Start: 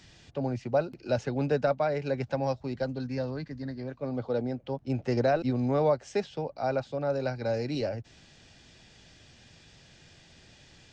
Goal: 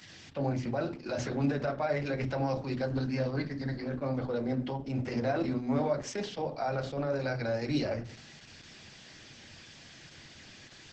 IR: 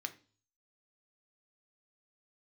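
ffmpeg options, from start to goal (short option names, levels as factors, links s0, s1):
-filter_complex "[0:a]alimiter=level_in=1.26:limit=0.0631:level=0:latency=1:release=17,volume=0.794[s0];[1:a]atrim=start_sample=2205,asetrate=37485,aresample=44100[s1];[s0][s1]afir=irnorm=-1:irlink=0,volume=2" -ar 48000 -c:a libopus -b:a 10k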